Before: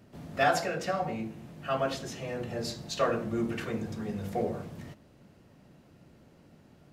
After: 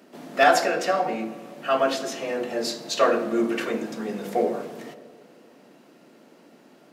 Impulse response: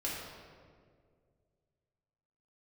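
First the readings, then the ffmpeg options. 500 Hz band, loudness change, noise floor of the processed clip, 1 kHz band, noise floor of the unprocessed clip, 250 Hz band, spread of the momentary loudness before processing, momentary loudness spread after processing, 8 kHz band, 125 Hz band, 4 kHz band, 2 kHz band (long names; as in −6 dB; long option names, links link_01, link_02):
+8.5 dB, +8.0 dB, −54 dBFS, +8.5 dB, −59 dBFS, +6.0 dB, 14 LU, 15 LU, +8.0 dB, −7.0 dB, +8.0 dB, +8.0 dB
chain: -filter_complex "[0:a]highpass=frequency=240:width=0.5412,highpass=frequency=240:width=1.3066,asoftclip=type=hard:threshold=-15dB,asplit=2[link_01][link_02];[1:a]atrim=start_sample=2205[link_03];[link_02][link_03]afir=irnorm=-1:irlink=0,volume=-14.5dB[link_04];[link_01][link_04]amix=inputs=2:normalize=0,volume=7dB"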